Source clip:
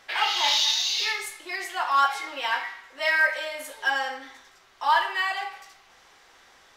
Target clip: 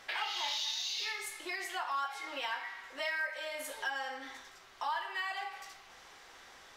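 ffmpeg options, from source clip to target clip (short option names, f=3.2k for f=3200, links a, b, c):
-af "acompressor=threshold=-38dB:ratio=3"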